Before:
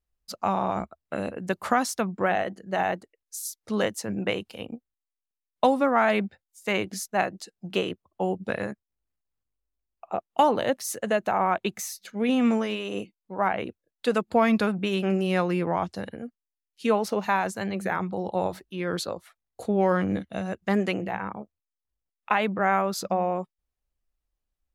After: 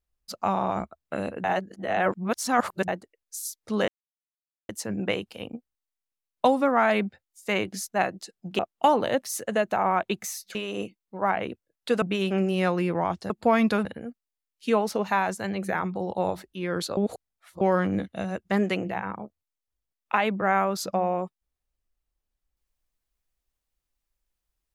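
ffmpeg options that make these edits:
-filter_complex "[0:a]asplit=11[a][b][c][d][e][f][g][h][i][j][k];[a]atrim=end=1.442[l];[b]atrim=start=1.438:end=2.882,asetpts=PTS-STARTPTS,areverse[m];[c]atrim=start=2.878:end=3.88,asetpts=PTS-STARTPTS,afade=t=out:st=0.998:d=0.004:c=hsin,apad=pad_dur=0.81[n];[d]atrim=start=3.88:end=7.782,asetpts=PTS-STARTPTS,afade=t=in:d=0.004:c=hsin[o];[e]atrim=start=10.138:end=12.102[p];[f]atrim=start=12.718:end=14.192[q];[g]atrim=start=14.738:end=16.022[r];[h]atrim=start=14.188:end=14.742[s];[i]atrim=start=16.018:end=19.142[t];[j]atrim=start=19.138:end=19.782,asetpts=PTS-STARTPTS,areverse[u];[k]atrim=start=19.778[v];[l][m]acrossfade=d=0.004:c1=hsin:c2=hsin[w];[n][o]concat=n=2:v=0:a=1[x];[w][x]acrossfade=d=0.004:c1=hsin:c2=hsin[y];[y][p]acrossfade=d=0.004:c1=hsin:c2=hsin[z];[z][q]acrossfade=d=0.004:c1=hsin:c2=hsin[aa];[aa][r]acrossfade=d=0.004:c1=hsin:c2=hsin[ab];[ab][s]acrossfade=d=0.004:c1=hsin:c2=hsin[ac];[ac][t]acrossfade=d=0.004:c1=hsin:c2=hsin[ad];[ad][u]acrossfade=d=0.004:c1=hsin:c2=hsin[ae];[ae][v]acrossfade=d=0.004:c1=hsin:c2=hsin"

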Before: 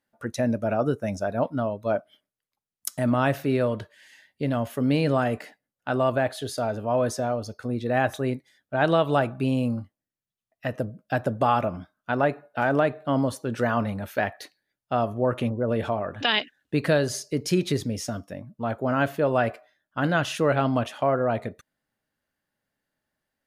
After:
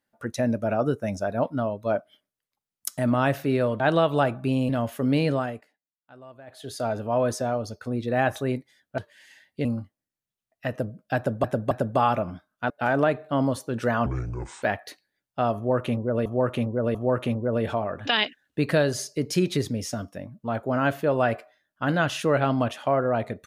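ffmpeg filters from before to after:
-filter_complex "[0:a]asplit=14[a][b][c][d][e][f][g][h][i][j][k][l][m][n];[a]atrim=end=3.802[o];[b]atrim=start=8.758:end=9.652[p];[c]atrim=start=4.468:end=5.44,asetpts=PTS-STARTPTS,afade=t=out:st=0.562:d=0.41:silence=0.0707946[q];[d]atrim=start=5.44:end=6.24,asetpts=PTS-STARTPTS,volume=-23dB[r];[e]atrim=start=6.24:end=8.762,asetpts=PTS-STARTPTS,afade=t=in:d=0.41:silence=0.0707946[s];[f]atrim=start=3.798:end=4.472[t];[g]atrim=start=9.648:end=11.442[u];[h]atrim=start=11.168:end=11.442[v];[i]atrim=start=11.168:end=12.162[w];[j]atrim=start=12.458:end=13.824[x];[k]atrim=start=13.82:end=14.16,asetpts=PTS-STARTPTS,asetrate=26460,aresample=44100[y];[l]atrim=start=14.156:end=15.792[z];[m]atrim=start=15.098:end=15.792[aa];[n]atrim=start=15.098[ab];[o][p]acrossfade=d=0.004:c1=hsin:c2=hsin[ac];[q][r][s]concat=n=3:v=0:a=1[ad];[ac][ad]acrossfade=d=0.004:c1=hsin:c2=hsin[ae];[ae][t]acrossfade=d=0.004:c1=hsin:c2=hsin[af];[af][u]acrossfade=d=0.004:c1=hsin:c2=hsin[ag];[ag][v]acrossfade=d=0.004:c1=hsin:c2=hsin[ah];[ah][w]acrossfade=d=0.004:c1=hsin:c2=hsin[ai];[ai][x]acrossfade=d=0.004:c1=hsin:c2=hsin[aj];[aj][y]acrossfade=d=0.004:c1=hsin:c2=hsin[ak];[ak][z]acrossfade=d=0.004:c1=hsin:c2=hsin[al];[al][aa]acrossfade=d=0.004:c1=hsin:c2=hsin[am];[am][ab]acrossfade=d=0.004:c1=hsin:c2=hsin"

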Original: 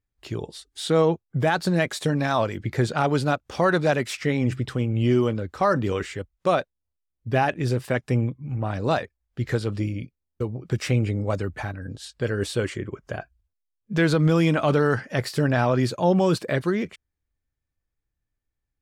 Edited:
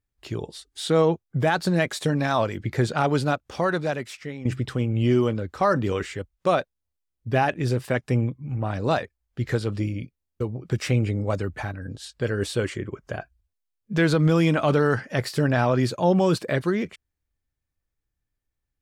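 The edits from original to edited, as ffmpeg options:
-filter_complex "[0:a]asplit=2[a][b];[a]atrim=end=4.45,asetpts=PTS-STARTPTS,afade=t=out:st=3.19:d=1.26:silence=0.188365[c];[b]atrim=start=4.45,asetpts=PTS-STARTPTS,afade=t=in:d=0.004:c=hsin:silence=0.188365[d];[c][d]concat=n=2:v=0:a=1"

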